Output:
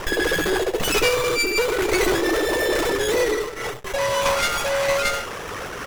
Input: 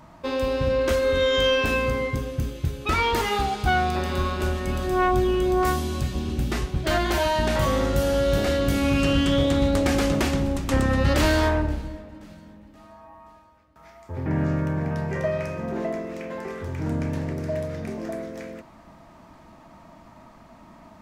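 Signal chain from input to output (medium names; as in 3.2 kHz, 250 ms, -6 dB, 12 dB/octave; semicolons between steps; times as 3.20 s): peaking EQ 70 Hz +10.5 dB 1.5 oct; reverberation RT60 2.4 s, pre-delay 58 ms, DRR 15 dB; reverse; compression 8:1, threshold -27 dBFS, peak gain reduction 18.5 dB; reverse; resonant low shelf 570 Hz -9 dB, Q 3; on a send: feedback delay 241 ms, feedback 31%, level -14.5 dB; on the sum: formant-preserving pitch shift +10 st; waveshaping leveller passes 3; brick-wall FIR low-pass 4.4 kHz; wide varispeed 3.58×; sliding maximum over 9 samples; trim +7 dB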